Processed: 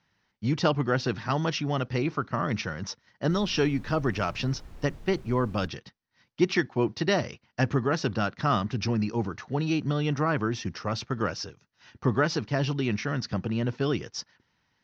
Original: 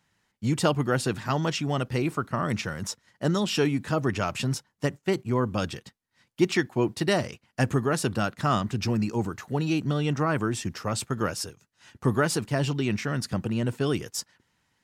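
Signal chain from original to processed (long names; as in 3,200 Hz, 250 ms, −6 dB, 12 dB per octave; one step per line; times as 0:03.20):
Chebyshev low-pass filter 6,000 Hz, order 6
0:03.29–0:05.66: background noise brown −43 dBFS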